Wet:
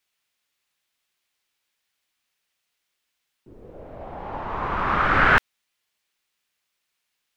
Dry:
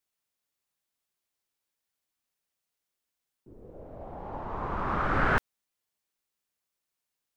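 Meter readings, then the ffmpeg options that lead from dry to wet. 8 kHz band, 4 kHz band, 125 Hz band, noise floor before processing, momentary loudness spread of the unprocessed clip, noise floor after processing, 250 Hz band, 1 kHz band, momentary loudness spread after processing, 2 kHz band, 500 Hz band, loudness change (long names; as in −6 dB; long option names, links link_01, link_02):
can't be measured, +12.5 dB, +3.5 dB, below −85 dBFS, 20 LU, −79 dBFS, +4.0 dB, +8.5 dB, 21 LU, +11.0 dB, +5.0 dB, +9.5 dB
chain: -af "equalizer=frequency=2600:width_type=o:width=2.3:gain=10,volume=3.5dB"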